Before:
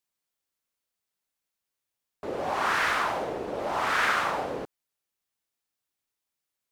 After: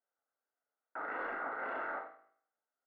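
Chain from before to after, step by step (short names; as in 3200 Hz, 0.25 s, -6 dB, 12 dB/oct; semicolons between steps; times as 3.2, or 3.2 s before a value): minimum comb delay 3.4 ms; Chebyshev band-pass 110–720 Hz, order 4; negative-ratio compressor -39 dBFS, ratio -0.5; limiter -37 dBFS, peak gain reduction 10 dB; flange 1 Hz, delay 9.8 ms, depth 7.6 ms, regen +72%; loudspeakers at several distances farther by 32 m -6 dB, 76 m -11 dB; spring tank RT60 1.4 s, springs 44/57 ms, chirp 55 ms, DRR 5.5 dB; speed mistake 33 rpm record played at 78 rpm; gain +7.5 dB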